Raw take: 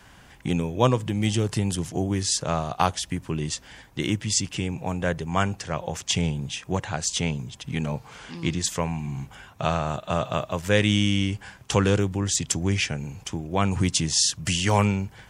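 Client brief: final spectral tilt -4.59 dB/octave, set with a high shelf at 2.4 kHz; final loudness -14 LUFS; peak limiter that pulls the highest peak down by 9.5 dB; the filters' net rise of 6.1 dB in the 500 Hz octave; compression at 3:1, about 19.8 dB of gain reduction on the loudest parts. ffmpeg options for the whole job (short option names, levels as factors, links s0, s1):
-af "equalizer=f=500:t=o:g=7.5,highshelf=f=2400:g=-4,acompressor=threshold=0.0112:ratio=3,volume=22.4,alimiter=limit=0.794:level=0:latency=1"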